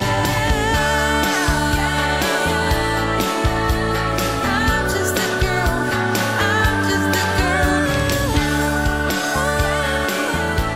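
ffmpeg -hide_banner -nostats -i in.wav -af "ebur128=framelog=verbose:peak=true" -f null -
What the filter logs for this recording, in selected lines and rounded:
Integrated loudness:
  I:         -18.2 LUFS
  Threshold: -28.1 LUFS
Loudness range:
  LRA:         1.0 LU
  Threshold: -38.1 LUFS
  LRA low:   -18.6 LUFS
  LRA high:  -17.7 LUFS
True peak:
  Peak:       -6.4 dBFS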